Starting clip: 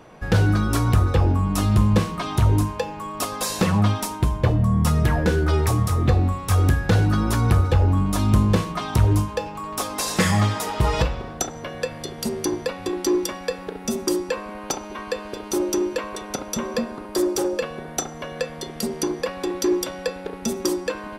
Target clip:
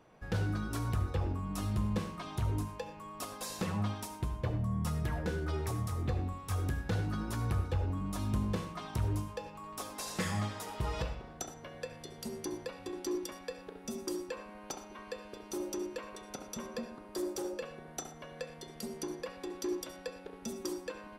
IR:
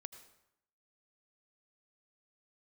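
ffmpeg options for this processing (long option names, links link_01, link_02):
-filter_complex "[1:a]atrim=start_sample=2205,afade=type=out:start_time=0.2:duration=0.01,atrim=end_sample=9261,asetrate=52920,aresample=44100[link_01];[0:a][link_01]afir=irnorm=-1:irlink=0,volume=-8dB"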